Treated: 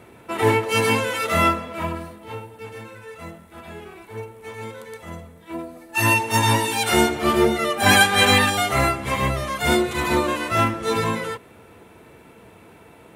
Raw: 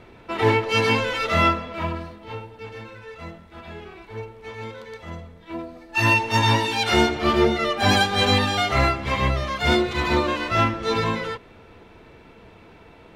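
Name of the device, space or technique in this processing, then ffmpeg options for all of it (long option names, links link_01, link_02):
budget condenser microphone: -filter_complex "[0:a]highpass=85,highshelf=frequency=6900:width_type=q:width=1.5:gain=13,asettb=1/sr,asplit=3[link_01][link_02][link_03];[link_01]atrim=end=7.864[link_04];[link_02]atrim=start=7.86:end=8.5,asetpts=PTS-STARTPTS,afade=type=in:duration=0.004:curve=qsin,afade=type=out:start_time=0.636:duration=0.004:curve=qsin,equalizer=frequency=2000:width=0.79:gain=8[link_05];[link_03]atrim=start=8.496[link_06];[link_04][link_05]acrossfade=duration=0.004:curve1=hsin:curve2=qsin[link_07];[link_07][link_06]acrossfade=duration=0.004:curve1=qsin:curve2=hsin,volume=1dB"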